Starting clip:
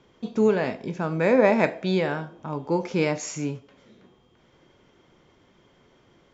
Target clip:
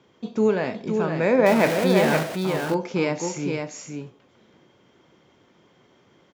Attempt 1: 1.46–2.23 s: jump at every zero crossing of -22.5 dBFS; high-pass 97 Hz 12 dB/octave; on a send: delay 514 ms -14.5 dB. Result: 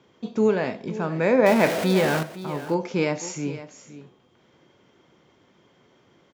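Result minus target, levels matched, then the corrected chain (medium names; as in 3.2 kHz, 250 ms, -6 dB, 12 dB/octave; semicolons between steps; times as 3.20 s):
echo-to-direct -9.5 dB
1.46–2.23 s: jump at every zero crossing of -22.5 dBFS; high-pass 97 Hz 12 dB/octave; on a send: delay 514 ms -5 dB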